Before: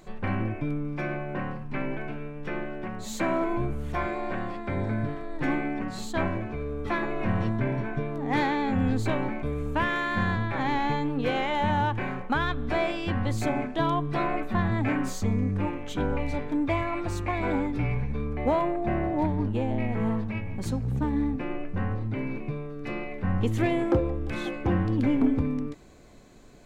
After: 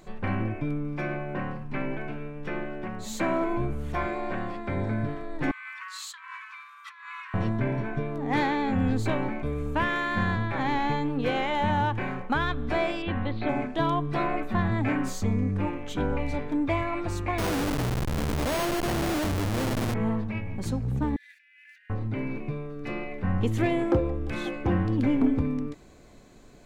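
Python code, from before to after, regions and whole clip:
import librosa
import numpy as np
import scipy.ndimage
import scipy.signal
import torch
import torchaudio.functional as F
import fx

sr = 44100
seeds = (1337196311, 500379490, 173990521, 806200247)

y = fx.chain(x, sr, fx.steep_highpass(hz=1000.0, slope=96),
    fx.over_compress(threshold_db=-42.0, ratio=-1.0), at=(5.51, 7.34))
y = fx.chain(y, sr, fx.cheby1_lowpass(hz=4000.0, order=5),
    fx.peak_eq(hz=130.0, db=-12.5, octaves=0.42), at=(13.02, 13.49))
y = fx.chain(y, sr, fx.schmitt(flips_db=-33.5),
    fx.resample_bad(factor=6, down='none', up='hold'), at=(17.38, 19.94))
y = fx.chain(y, sr, fx.steep_highpass(hz=1600.0, slope=96),
    fx.comb(ms=2.9, depth=0.38),
    fx.over_compress(threshold_db=-56.0, ratio=-1.0), at=(21.16, 21.9))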